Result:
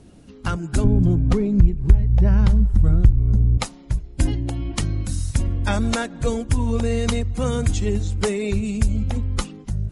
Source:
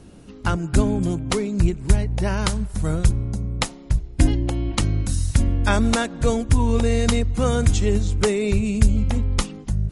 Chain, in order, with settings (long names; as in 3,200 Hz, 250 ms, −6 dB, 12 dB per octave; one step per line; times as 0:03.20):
spectral magnitudes quantised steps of 15 dB
0:00.84–0:03.58: RIAA equalisation playback
downward compressor 3 to 1, threshold −10 dBFS, peak gain reduction 12 dB
level −2 dB